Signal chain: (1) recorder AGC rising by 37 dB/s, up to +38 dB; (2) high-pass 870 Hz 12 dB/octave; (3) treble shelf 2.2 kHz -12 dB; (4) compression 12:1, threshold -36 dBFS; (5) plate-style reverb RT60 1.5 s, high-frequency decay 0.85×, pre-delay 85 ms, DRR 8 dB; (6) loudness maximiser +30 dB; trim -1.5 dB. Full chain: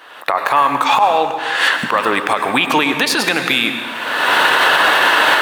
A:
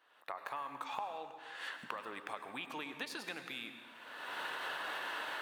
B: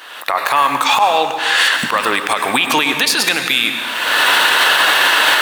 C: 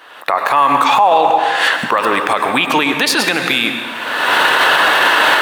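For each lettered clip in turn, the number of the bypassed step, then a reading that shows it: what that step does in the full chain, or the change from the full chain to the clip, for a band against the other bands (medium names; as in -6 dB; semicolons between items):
6, crest factor change +10.0 dB; 3, 8 kHz band +7.5 dB; 4, mean gain reduction 2.5 dB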